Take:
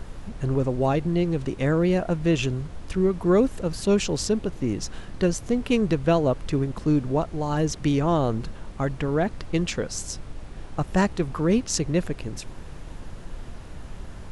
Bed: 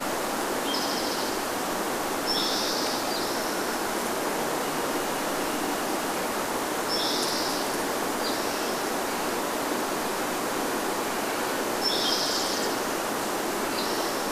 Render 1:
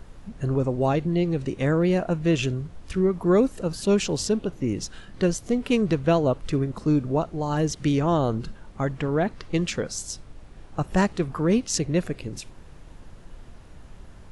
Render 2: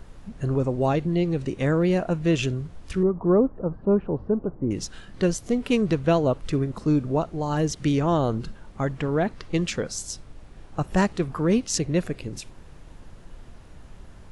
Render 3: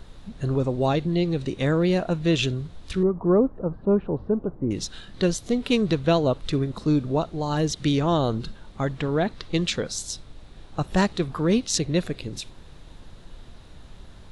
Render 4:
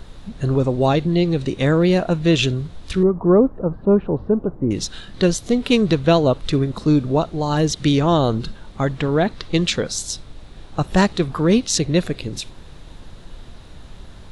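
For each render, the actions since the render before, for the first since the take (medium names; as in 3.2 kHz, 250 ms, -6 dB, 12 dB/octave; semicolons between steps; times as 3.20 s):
noise print and reduce 7 dB
3.03–4.71 s: low-pass 1.2 kHz 24 dB/octave
peaking EQ 3.8 kHz +11 dB 0.44 oct
trim +5.5 dB; peak limiter -2 dBFS, peak gain reduction 2 dB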